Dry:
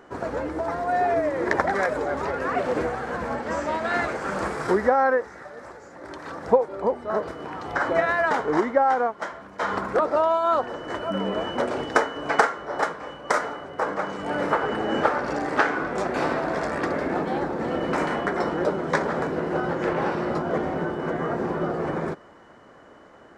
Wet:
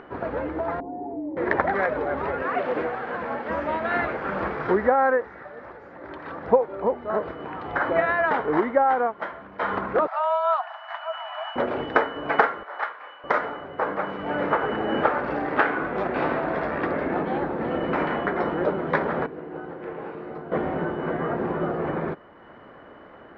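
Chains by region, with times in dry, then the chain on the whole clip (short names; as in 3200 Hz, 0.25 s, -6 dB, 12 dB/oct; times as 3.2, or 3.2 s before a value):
0.8–1.37 vocal tract filter u + fast leveller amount 50%
2.42–3.5 HPF 260 Hz 6 dB/oct + high shelf 5800 Hz +5.5 dB
10.07–11.56 Chebyshev high-pass 660 Hz, order 8 + frequency shift -18 Hz
12.63–13.24 HPF 1000 Hz + air absorption 88 m
19.26–20.52 bell 430 Hz +4.5 dB 1.2 oct + notch 580 Hz, Q 13 + resonator 150 Hz, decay 1.9 s, mix 80%
whole clip: LPF 3200 Hz 24 dB/oct; upward compressor, threshold -40 dBFS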